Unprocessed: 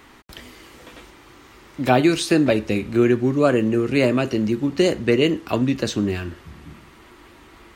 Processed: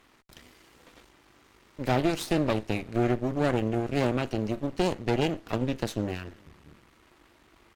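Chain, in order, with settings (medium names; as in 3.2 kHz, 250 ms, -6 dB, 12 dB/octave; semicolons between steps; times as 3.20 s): echo from a far wall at 66 m, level -26 dB; half-wave rectifier; Chebyshev shaper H 6 -18 dB, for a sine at -3 dBFS; trim -8 dB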